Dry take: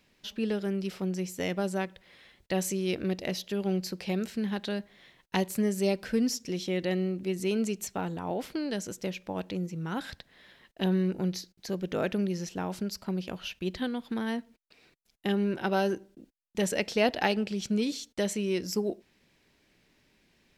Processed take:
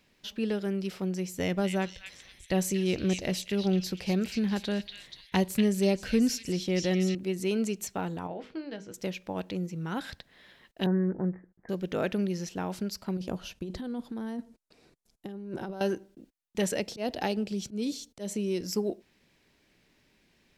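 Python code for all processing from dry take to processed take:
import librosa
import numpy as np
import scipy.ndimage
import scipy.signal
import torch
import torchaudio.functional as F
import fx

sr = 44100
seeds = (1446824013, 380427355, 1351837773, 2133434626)

y = fx.chain(x, sr, fx.low_shelf(hz=120.0, db=12.0),
    fx.echo_stepped(ms=240, hz=3000.0, octaves=0.7, feedback_pct=70, wet_db=-1.5), at=(1.34, 7.15))
y = fx.chain(y, sr, fx.lowpass(hz=3400.0, slope=12),
    fx.hum_notches(base_hz=50, count=10),
    fx.comb_fb(f0_hz=160.0, decay_s=0.21, harmonics='all', damping=0.0, mix_pct=60), at=(8.27, 8.94))
y = fx.chain(y, sr, fx.steep_lowpass(hz=1900.0, slope=72),
    fx.notch(hz=1400.0, q=11.0), at=(10.86, 11.69))
y = fx.chain(y, sr, fx.lowpass(hz=11000.0, slope=12),
    fx.peak_eq(hz=2500.0, db=-12.0, octaves=2.0),
    fx.over_compress(threshold_db=-36.0, ratio=-1.0), at=(13.17, 15.81))
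y = fx.chain(y, sr, fx.peak_eq(hz=1800.0, db=-8.5, octaves=2.1),
    fx.auto_swell(attack_ms=161.0),
    fx.band_squash(depth_pct=40), at=(16.78, 18.61))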